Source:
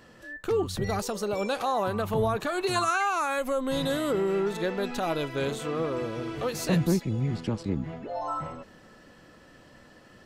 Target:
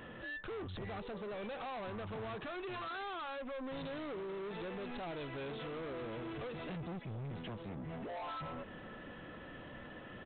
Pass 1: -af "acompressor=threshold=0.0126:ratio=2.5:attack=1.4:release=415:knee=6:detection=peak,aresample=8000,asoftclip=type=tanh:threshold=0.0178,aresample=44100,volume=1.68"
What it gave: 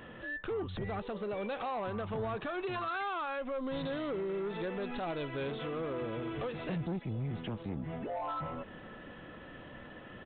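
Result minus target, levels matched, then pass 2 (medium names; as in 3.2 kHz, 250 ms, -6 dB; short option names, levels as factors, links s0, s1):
saturation: distortion -8 dB
-af "acompressor=threshold=0.0126:ratio=2.5:attack=1.4:release=415:knee=6:detection=peak,aresample=8000,asoftclip=type=tanh:threshold=0.00562,aresample=44100,volume=1.68"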